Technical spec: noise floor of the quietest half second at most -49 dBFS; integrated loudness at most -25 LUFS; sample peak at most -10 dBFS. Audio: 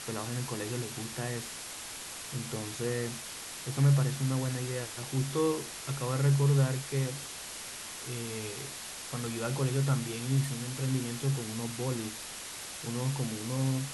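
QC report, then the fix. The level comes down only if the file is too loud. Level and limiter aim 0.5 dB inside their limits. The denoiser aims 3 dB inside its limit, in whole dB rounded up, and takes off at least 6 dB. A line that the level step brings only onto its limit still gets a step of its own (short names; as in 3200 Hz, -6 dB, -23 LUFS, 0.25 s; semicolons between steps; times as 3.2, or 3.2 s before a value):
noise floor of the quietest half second -42 dBFS: fail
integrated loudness -32.5 LUFS: OK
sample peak -15.5 dBFS: OK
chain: denoiser 10 dB, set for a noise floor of -42 dBFS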